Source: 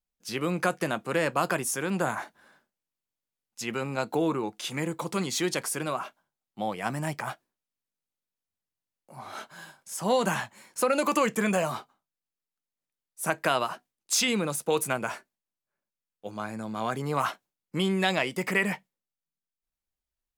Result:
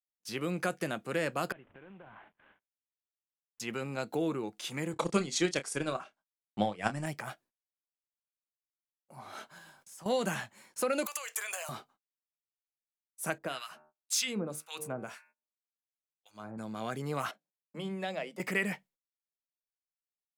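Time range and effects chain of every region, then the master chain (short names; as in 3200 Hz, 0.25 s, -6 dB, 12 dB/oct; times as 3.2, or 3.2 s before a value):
1.52–3.6 CVSD 16 kbps + compressor 5:1, threshold -46 dBFS
4.93–7.06 LPF 9000 Hz 24 dB/oct + transient shaper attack +11 dB, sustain -8 dB + doubler 29 ms -11.5 dB
9.58–10.06 G.711 law mismatch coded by mu + compressor 2:1, threshold -53 dBFS
11.06–11.69 HPF 600 Hz 24 dB/oct + compressor 10:1, threshold -31 dBFS + tilt +3 dB/oct
13.38–16.58 de-hum 76.2 Hz, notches 36 + harmonic tremolo 1.9 Hz, depth 100%, crossover 1200 Hz
17.31–18.4 rippled Chebyshev high-pass 150 Hz, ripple 9 dB + high shelf 7000 Hz -5 dB + notches 60/120/180/240/300 Hz
whole clip: dynamic EQ 980 Hz, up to -7 dB, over -44 dBFS, Q 2.5; gate -58 dBFS, range -25 dB; gain -5 dB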